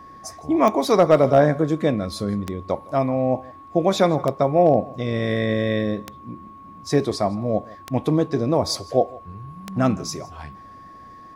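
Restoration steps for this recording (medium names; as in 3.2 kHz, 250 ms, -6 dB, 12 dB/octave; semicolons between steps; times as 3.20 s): clip repair -6 dBFS; de-click; band-stop 1.1 kHz, Q 30; inverse comb 162 ms -22.5 dB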